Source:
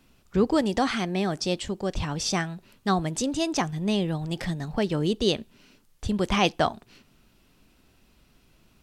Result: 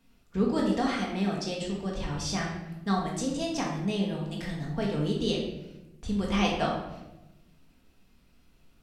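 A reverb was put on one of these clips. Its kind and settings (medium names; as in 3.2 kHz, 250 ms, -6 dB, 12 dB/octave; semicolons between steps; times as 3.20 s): simulated room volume 390 m³, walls mixed, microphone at 1.7 m; trim -9 dB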